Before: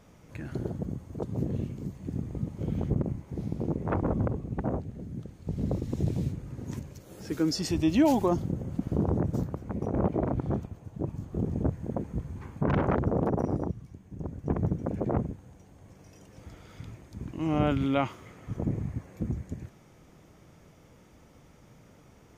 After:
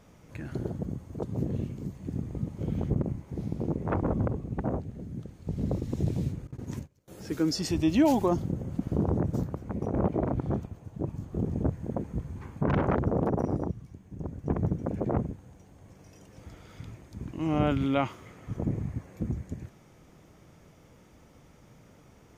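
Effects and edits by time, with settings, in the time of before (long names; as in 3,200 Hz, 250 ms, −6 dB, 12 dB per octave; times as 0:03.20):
0:06.47–0:07.08: noise gate −41 dBFS, range −23 dB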